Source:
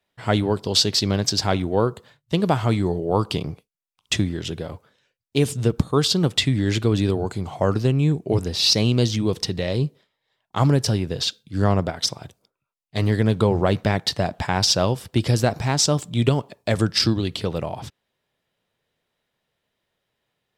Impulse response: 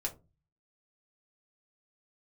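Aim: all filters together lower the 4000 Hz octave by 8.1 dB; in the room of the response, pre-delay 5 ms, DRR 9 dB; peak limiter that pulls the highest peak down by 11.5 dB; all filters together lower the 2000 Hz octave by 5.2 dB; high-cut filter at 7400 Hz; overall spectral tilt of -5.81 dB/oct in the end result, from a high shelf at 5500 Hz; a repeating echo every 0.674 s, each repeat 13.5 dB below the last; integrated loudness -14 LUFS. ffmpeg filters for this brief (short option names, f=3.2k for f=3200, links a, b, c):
-filter_complex "[0:a]lowpass=7.4k,equalizer=f=2k:t=o:g=-4.5,equalizer=f=4k:t=o:g=-6,highshelf=f=5.5k:g=-5.5,alimiter=limit=-15.5dB:level=0:latency=1,aecho=1:1:674|1348:0.211|0.0444,asplit=2[a][b];[1:a]atrim=start_sample=2205,adelay=5[c];[b][c]afir=irnorm=-1:irlink=0,volume=-10.5dB[d];[a][d]amix=inputs=2:normalize=0,volume=12.5dB"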